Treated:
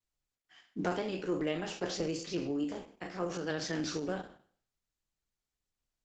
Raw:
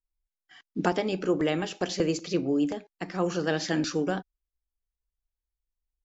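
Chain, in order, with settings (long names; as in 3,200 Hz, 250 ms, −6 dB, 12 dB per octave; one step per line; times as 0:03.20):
peak hold with a decay on every bin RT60 0.48 s
0:02.64–0:03.50: high-pass filter 150 Hz 12 dB per octave
level −8 dB
Opus 10 kbit/s 48,000 Hz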